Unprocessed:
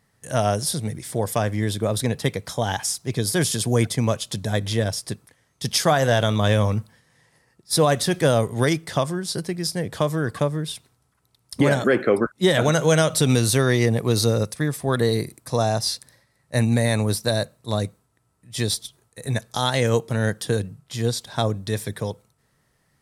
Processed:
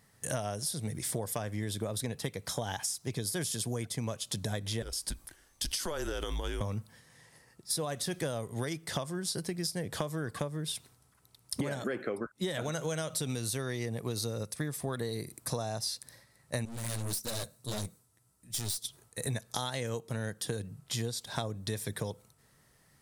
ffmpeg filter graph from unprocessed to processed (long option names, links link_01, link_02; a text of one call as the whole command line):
ffmpeg -i in.wav -filter_complex "[0:a]asettb=1/sr,asplit=3[link_01][link_02][link_03];[link_01]atrim=end=4.824[link_04];[link_02]atrim=start=4.82:end=6.61,asetpts=PTS-STARTPTS,afade=type=in:duration=0.004:curve=qsin,afade=type=out:start_time=1.786:duration=0.004:curve=qsin,highshelf=frequency=12000:gain=5.5,acompressor=threshold=-26dB:ratio=3:attack=3.2:release=140:knee=1:detection=peak,afreqshift=-160[link_05];[link_03]atrim=start=6.606[link_06];[link_04][link_05]acrossfade=duration=0.004:curve1=hsin:curve2=qsin[link_07];[link_07][link_06]acrossfade=duration=0.004:curve1=qsin:curve2=hsin,asettb=1/sr,asplit=3[link_08][link_09][link_10];[link_08]atrim=end=16.654[link_11];[link_09]atrim=start=16.65:end=18.84,asetpts=PTS-STARTPTS,afade=type=in:duration=0.004:curve=qsin,afade=type=out:start_time=2.186:duration=0.004:curve=qsin,flanger=delay=2.8:depth=8.4:regen=-20:speed=1.7:shape=triangular,aeval=exprs='(tanh(44.7*val(0)+0.65)-tanh(0.65))/44.7':channel_layout=same,bass=frequency=250:gain=3,treble=frequency=4000:gain=8[link_12];[link_10]atrim=start=18.836[link_13];[link_11][link_12]acrossfade=duration=0.004:curve1=hsin:curve2=qsin[link_14];[link_14][link_13]acrossfade=duration=0.004:curve1=qsin:curve2=hsin,highshelf=frequency=5100:gain=5.5,acompressor=threshold=-31dB:ratio=12" out.wav